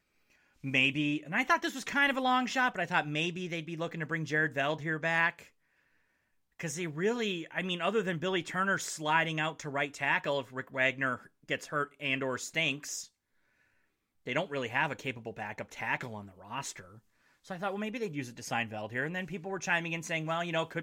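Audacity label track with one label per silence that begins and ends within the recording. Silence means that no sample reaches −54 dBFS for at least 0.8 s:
5.490000	6.590000	silence
13.080000	14.260000	silence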